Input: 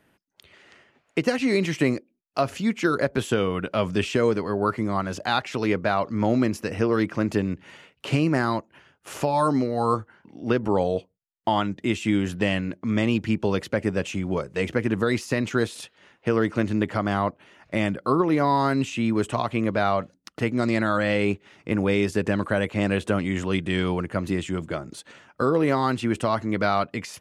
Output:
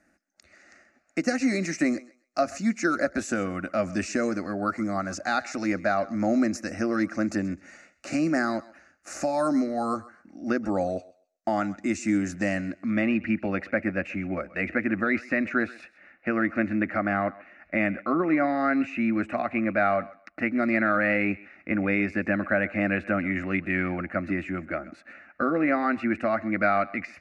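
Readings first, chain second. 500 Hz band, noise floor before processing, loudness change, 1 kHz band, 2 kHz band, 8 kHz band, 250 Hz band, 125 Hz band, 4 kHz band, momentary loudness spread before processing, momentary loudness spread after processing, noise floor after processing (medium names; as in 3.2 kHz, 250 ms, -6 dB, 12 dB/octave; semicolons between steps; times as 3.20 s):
-4.0 dB, -69 dBFS, -2.0 dB, -3.0 dB, +2.0 dB, 0.0 dB, -1.5 dB, -8.5 dB, -10.0 dB, 7 LU, 8 LU, -66 dBFS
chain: low-pass sweep 6.5 kHz -> 2.5 kHz, 12.55–13.13 s; static phaser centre 650 Hz, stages 8; thinning echo 130 ms, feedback 22%, high-pass 480 Hz, level -18.5 dB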